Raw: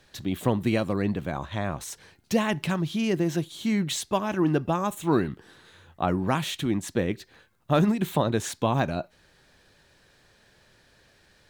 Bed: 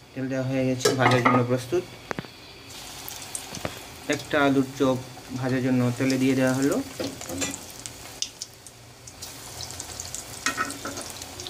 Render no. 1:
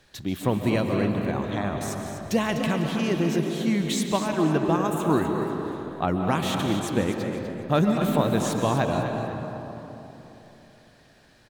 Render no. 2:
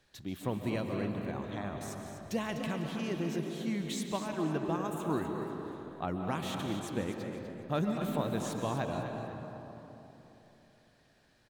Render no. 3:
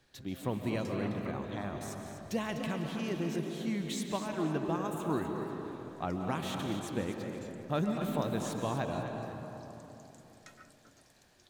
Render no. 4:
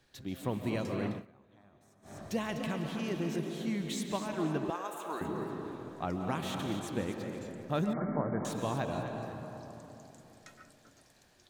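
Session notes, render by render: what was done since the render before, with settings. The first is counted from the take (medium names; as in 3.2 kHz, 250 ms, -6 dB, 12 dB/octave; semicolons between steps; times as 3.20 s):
frequency-shifting echo 249 ms, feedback 35%, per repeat +46 Hz, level -10 dB; algorithmic reverb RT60 3.5 s, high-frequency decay 0.4×, pre-delay 100 ms, DRR 4 dB
trim -10.5 dB
add bed -29.5 dB
1.10–2.18 s: dip -23.5 dB, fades 0.16 s; 4.70–5.21 s: high-pass 580 Hz; 7.93–8.45 s: brick-wall FIR low-pass 2.3 kHz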